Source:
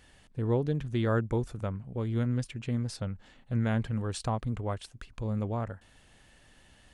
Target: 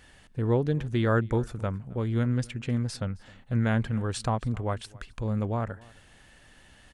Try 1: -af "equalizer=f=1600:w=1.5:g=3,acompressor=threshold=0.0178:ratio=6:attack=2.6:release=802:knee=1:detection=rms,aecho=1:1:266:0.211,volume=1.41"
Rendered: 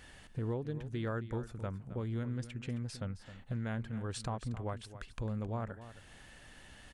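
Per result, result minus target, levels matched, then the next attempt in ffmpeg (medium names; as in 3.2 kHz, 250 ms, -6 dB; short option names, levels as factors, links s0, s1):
compression: peak gain reduction +14 dB; echo-to-direct +10.5 dB
-af "equalizer=f=1600:w=1.5:g=3,aecho=1:1:266:0.211,volume=1.41"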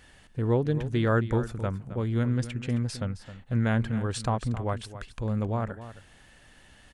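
echo-to-direct +10.5 dB
-af "equalizer=f=1600:w=1.5:g=3,aecho=1:1:266:0.0631,volume=1.41"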